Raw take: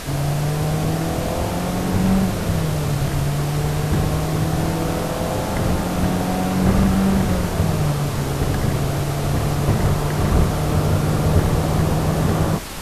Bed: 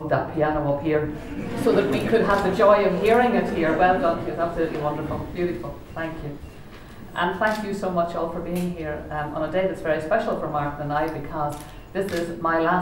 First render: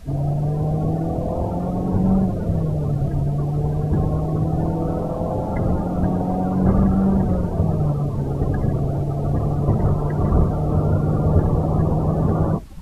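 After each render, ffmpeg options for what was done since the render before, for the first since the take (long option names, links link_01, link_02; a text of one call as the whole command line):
ffmpeg -i in.wav -af "afftdn=noise_reduction=22:noise_floor=-23" out.wav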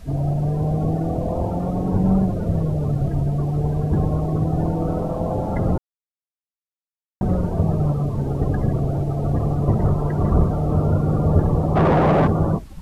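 ffmpeg -i in.wav -filter_complex "[0:a]asplit=3[link_01][link_02][link_03];[link_01]afade=type=out:start_time=11.75:duration=0.02[link_04];[link_02]asplit=2[link_05][link_06];[link_06]highpass=frequency=720:poles=1,volume=29dB,asoftclip=type=tanh:threshold=-8dB[link_07];[link_05][link_07]amix=inputs=2:normalize=0,lowpass=frequency=1300:poles=1,volume=-6dB,afade=type=in:start_time=11.75:duration=0.02,afade=type=out:start_time=12.26:duration=0.02[link_08];[link_03]afade=type=in:start_time=12.26:duration=0.02[link_09];[link_04][link_08][link_09]amix=inputs=3:normalize=0,asplit=3[link_10][link_11][link_12];[link_10]atrim=end=5.78,asetpts=PTS-STARTPTS,afade=type=out:start_time=5.776:duration=0.004:curve=hsin[link_13];[link_11]atrim=start=5.78:end=7.21,asetpts=PTS-STARTPTS,volume=0[link_14];[link_12]atrim=start=7.21,asetpts=PTS-STARTPTS,afade=type=in:duration=0.004:curve=hsin[link_15];[link_13][link_14][link_15]concat=n=3:v=0:a=1" out.wav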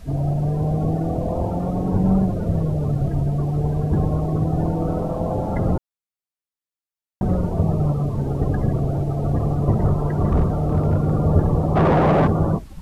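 ffmpeg -i in.wav -filter_complex "[0:a]asettb=1/sr,asplit=3[link_01][link_02][link_03];[link_01]atrim=end=7.364[link_04];[link_02]atrim=start=7.36:end=8,asetpts=PTS-STARTPTS,afade=type=in:duration=0.004:curve=qsin,afade=type=out:start_time=0.636:duration=0.004:curve=qsin,bandreject=frequency=1600:width=12[link_05];[link_03]atrim=start=7.996[link_06];[link_04][link_05]acrossfade=duration=0.004:curve1=hsin:curve2=qsin[link_07];[link_07][link_06]acrossfade=duration=0.004:curve1=qsin:curve2=hsin,asettb=1/sr,asplit=3[link_08][link_09][link_10];[link_08]atrim=end=10.274[link_11];[link_09]atrim=start=10.27:end=11.11,asetpts=PTS-STARTPTS,afade=type=in:duration=0.004:curve=qsin,afade=type=out:start_time=0.836:duration=0.004:curve=qsin,asoftclip=type=hard:threshold=-12dB[link_12];[link_10]atrim=start=11.106[link_13];[link_11][link_12]acrossfade=duration=0.004:curve1=hsin:curve2=qsin[link_14];[link_14][link_13]acrossfade=duration=0.004:curve1=qsin:curve2=hsin" out.wav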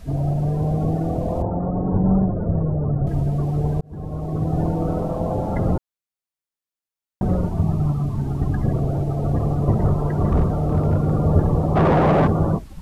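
ffmpeg -i in.wav -filter_complex "[0:a]asettb=1/sr,asplit=3[link_01][link_02][link_03];[link_01]atrim=end=1.424[link_04];[link_02]atrim=start=1.42:end=3.07,asetpts=PTS-STARTPTS,afade=type=in:duration=0.004:curve=qsin,afade=type=out:start_time=1.646:duration=0.004:curve=qsin,lowpass=frequency=1500:width=0.5412,lowpass=frequency=1500:width=1.3066[link_05];[link_03]atrim=start=3.066[link_06];[link_04][link_05]acrossfade=duration=0.004:curve1=hsin:curve2=qsin[link_07];[link_07][link_06]acrossfade=duration=0.004:curve1=qsin:curve2=hsin,asettb=1/sr,asplit=3[link_08][link_09][link_10];[link_08]atrim=end=7.484[link_11];[link_09]atrim=start=7.48:end=8.65,asetpts=PTS-STARTPTS,afade=type=in:duration=0.004:curve=qsin,afade=type=out:start_time=1.166:duration=0.004:curve=qsin,equalizer=frequency=510:width_type=o:width=0.54:gain=-15[link_12];[link_10]atrim=start=8.646[link_13];[link_11][link_12]acrossfade=duration=0.004:curve1=hsin:curve2=qsin[link_14];[link_14][link_13]acrossfade=duration=0.004:curve1=qsin:curve2=hsin,asplit=2[link_15][link_16];[link_15]atrim=end=3.81,asetpts=PTS-STARTPTS,afade=type=out:start_time=3.806:duration=0.004:curve=hsin[link_17];[link_16]atrim=start=3.81,asetpts=PTS-STARTPTS,afade=type=in:duration=0.76[link_18];[link_17][link_18]concat=n=2:v=0:a=1" out.wav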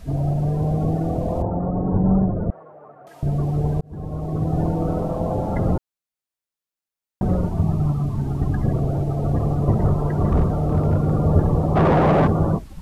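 ffmpeg -i in.wav -filter_complex "[0:a]asettb=1/sr,asplit=3[link_01][link_02][link_03];[link_01]atrim=end=2.504[link_04];[link_02]atrim=start=2.5:end=3.23,asetpts=PTS-STARTPTS,afade=type=in:duration=0.004:curve=qsin,afade=type=out:start_time=0.726:duration=0.004:curve=qsin,highpass=1100[link_05];[link_03]atrim=start=3.226[link_06];[link_04][link_05]acrossfade=duration=0.004:curve1=hsin:curve2=qsin[link_07];[link_07][link_06]acrossfade=duration=0.004:curve1=qsin:curve2=hsin" out.wav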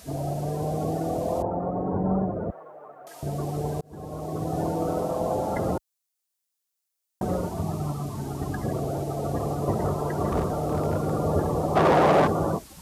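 ffmpeg -i in.wav -af "highpass=55,bass=frequency=250:gain=-11,treble=frequency=4000:gain=10" out.wav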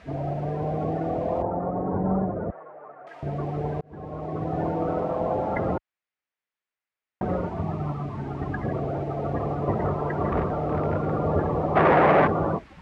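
ffmpeg -i in.wav -af "lowpass=frequency=2100:width_type=q:width=1.8" out.wav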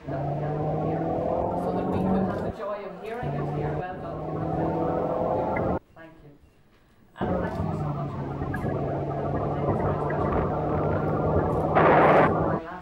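ffmpeg -i in.wav -i bed.wav -filter_complex "[1:a]volume=-17dB[link_01];[0:a][link_01]amix=inputs=2:normalize=0" out.wav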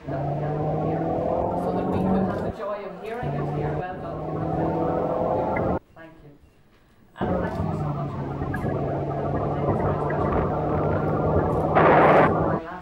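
ffmpeg -i in.wav -af "volume=2dB" out.wav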